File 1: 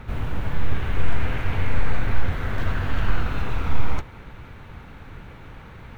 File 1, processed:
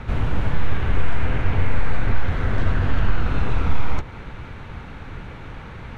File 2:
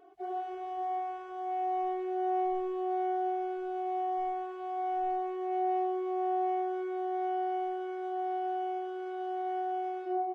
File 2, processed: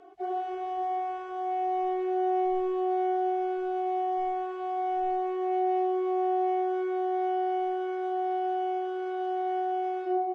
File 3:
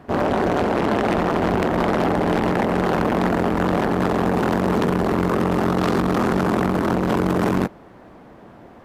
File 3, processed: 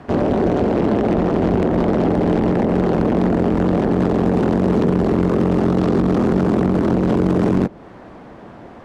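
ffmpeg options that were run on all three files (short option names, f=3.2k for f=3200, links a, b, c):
-filter_complex "[0:a]lowpass=8.2k,acrossover=split=600|1900[a][b][c];[a]acompressor=threshold=-16dB:ratio=4[d];[b]acompressor=threshold=-39dB:ratio=4[e];[c]acompressor=threshold=-46dB:ratio=4[f];[d][e][f]amix=inputs=3:normalize=0,volume=5.5dB"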